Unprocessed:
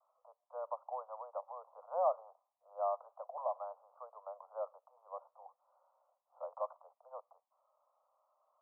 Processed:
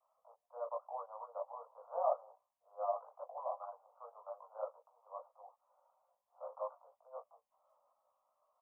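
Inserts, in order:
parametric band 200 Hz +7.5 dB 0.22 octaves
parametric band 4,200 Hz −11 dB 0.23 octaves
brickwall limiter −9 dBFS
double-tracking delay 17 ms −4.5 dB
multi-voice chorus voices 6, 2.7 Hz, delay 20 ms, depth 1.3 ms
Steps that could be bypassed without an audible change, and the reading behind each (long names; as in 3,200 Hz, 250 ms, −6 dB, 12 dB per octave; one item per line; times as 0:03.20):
parametric band 200 Hz: nothing at its input below 430 Hz
parametric band 4,200 Hz: nothing at its input above 1,400 Hz
brickwall limiter −9 dBFS: peak of its input −21.5 dBFS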